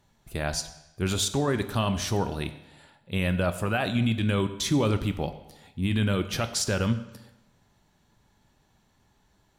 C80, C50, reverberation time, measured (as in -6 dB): 14.5 dB, 12.5 dB, 0.95 s